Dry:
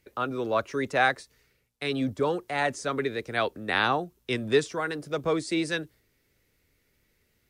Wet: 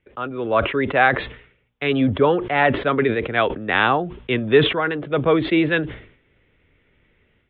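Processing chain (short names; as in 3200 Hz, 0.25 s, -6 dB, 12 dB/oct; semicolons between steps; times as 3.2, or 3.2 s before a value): AGC gain up to 10 dB; steep low-pass 3500 Hz 96 dB/oct; sustainer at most 100 dB/s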